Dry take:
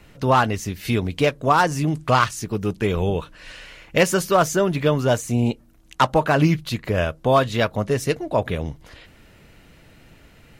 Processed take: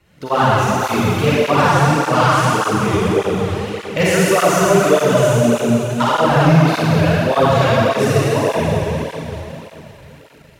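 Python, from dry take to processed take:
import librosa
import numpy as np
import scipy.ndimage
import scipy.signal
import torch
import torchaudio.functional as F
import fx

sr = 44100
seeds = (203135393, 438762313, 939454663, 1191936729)

y = fx.rev_schroeder(x, sr, rt60_s=3.6, comb_ms=38, drr_db=-9.0)
y = fx.leveller(y, sr, passes=1)
y = fx.flanger_cancel(y, sr, hz=1.7, depth_ms=4.7)
y = y * 10.0 ** (-3.5 / 20.0)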